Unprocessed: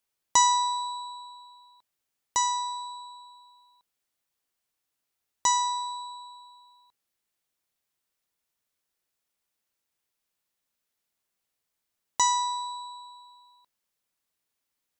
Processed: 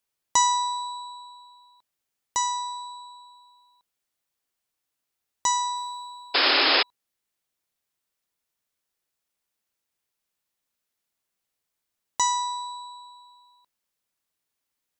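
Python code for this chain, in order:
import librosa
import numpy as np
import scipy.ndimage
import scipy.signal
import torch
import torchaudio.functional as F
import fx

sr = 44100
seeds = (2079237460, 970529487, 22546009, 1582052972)

y = fx.quant_companded(x, sr, bits=8, at=(5.75, 6.39), fade=0.02)
y = fx.spec_paint(y, sr, seeds[0], shape='noise', start_s=6.34, length_s=0.49, low_hz=260.0, high_hz=5300.0, level_db=-20.0)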